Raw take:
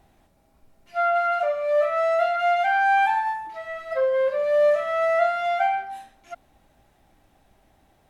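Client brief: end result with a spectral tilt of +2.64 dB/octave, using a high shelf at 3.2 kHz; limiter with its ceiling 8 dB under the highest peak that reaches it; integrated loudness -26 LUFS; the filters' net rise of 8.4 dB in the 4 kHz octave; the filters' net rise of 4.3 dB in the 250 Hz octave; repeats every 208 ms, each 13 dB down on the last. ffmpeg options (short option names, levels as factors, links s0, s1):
-af "equalizer=f=250:t=o:g=5.5,highshelf=f=3200:g=5,equalizer=f=4000:t=o:g=8,alimiter=limit=0.15:level=0:latency=1,aecho=1:1:208|416|624:0.224|0.0493|0.0108,volume=0.708"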